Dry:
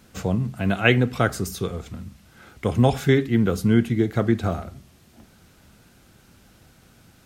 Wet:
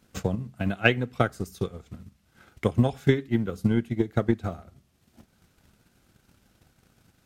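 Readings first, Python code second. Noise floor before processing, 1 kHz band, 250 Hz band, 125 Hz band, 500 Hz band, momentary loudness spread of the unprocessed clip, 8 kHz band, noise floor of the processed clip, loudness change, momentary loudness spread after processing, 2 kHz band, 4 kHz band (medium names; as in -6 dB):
-55 dBFS, -5.0 dB, -5.0 dB, -5.0 dB, -4.5 dB, 13 LU, under -10 dB, -67 dBFS, -4.5 dB, 12 LU, -3.5 dB, -5.0 dB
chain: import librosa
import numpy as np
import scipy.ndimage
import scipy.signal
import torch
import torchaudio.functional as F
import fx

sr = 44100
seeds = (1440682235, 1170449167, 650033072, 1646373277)

y = fx.transient(x, sr, attack_db=11, sustain_db=-5)
y = y * 10.0 ** (-10.0 / 20.0)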